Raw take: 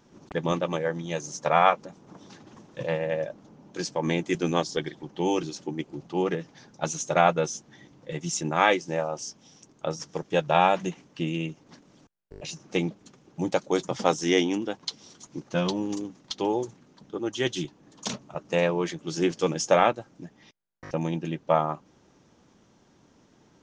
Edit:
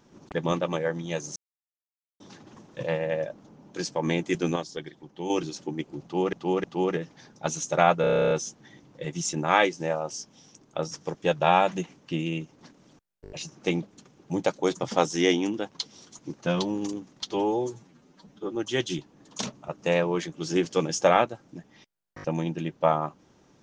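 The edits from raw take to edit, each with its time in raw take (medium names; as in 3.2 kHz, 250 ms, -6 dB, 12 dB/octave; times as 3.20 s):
1.36–2.20 s: mute
4.56–5.30 s: gain -7 dB
6.02–6.33 s: loop, 3 plays
7.39 s: stutter 0.03 s, 11 plays
16.39–17.22 s: stretch 1.5×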